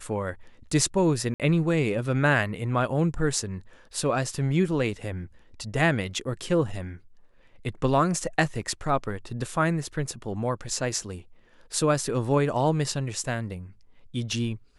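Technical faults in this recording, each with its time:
1.34–1.4 gap 57 ms

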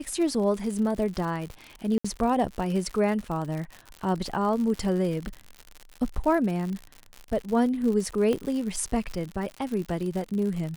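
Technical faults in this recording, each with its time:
crackle 110/s -32 dBFS
1.98–2.04 gap 65 ms
8.33 pop -16 dBFS

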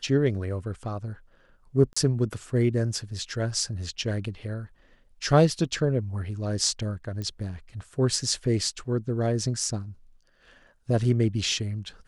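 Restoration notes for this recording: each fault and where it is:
1.93–1.97 gap 35 ms
7.22 pop -22 dBFS

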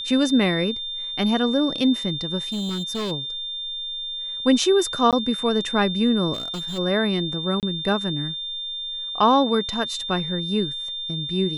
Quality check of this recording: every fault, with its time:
tone 3600 Hz -28 dBFS
2.52–3.12 clipped -23.5 dBFS
5.11–5.13 gap 17 ms
6.33–6.79 clipped -26.5 dBFS
7.6–7.63 gap 28 ms

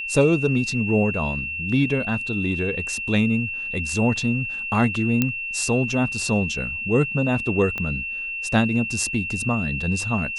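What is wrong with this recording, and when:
tone 2700 Hz -27 dBFS
5.22 pop -6 dBFS
7.78 pop -15 dBFS

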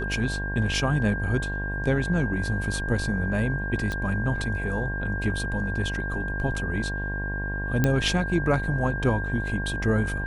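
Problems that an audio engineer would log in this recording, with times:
buzz 50 Hz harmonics 22 -31 dBFS
tone 1600 Hz -31 dBFS
3.92 pop -18 dBFS
7.84 pop -9 dBFS

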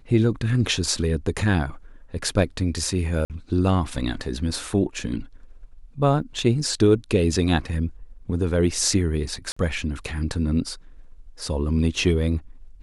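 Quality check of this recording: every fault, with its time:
3.25–3.3 gap 48 ms
6.22 gap 4.9 ms
9.52–9.56 gap 45 ms

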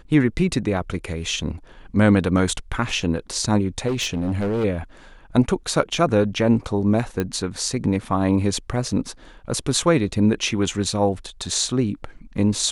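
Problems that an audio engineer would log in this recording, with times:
3.87–4.65 clipped -19 dBFS
7.2 pop -11 dBFS

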